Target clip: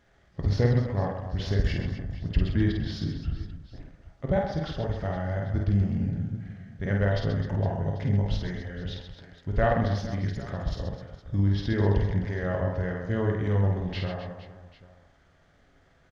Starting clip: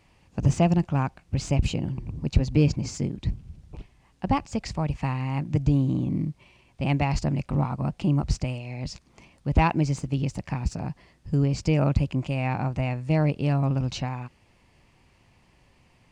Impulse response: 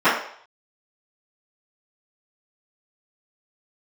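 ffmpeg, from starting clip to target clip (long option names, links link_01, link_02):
-filter_complex "[0:a]asetrate=31183,aresample=44100,atempo=1.41421,aecho=1:1:50|130|258|462.8|790.5:0.631|0.398|0.251|0.158|0.1,asplit=2[link_01][link_02];[1:a]atrim=start_sample=2205,asetrate=39249,aresample=44100[link_03];[link_02][link_03]afir=irnorm=-1:irlink=0,volume=-28dB[link_04];[link_01][link_04]amix=inputs=2:normalize=0,volume=-4dB"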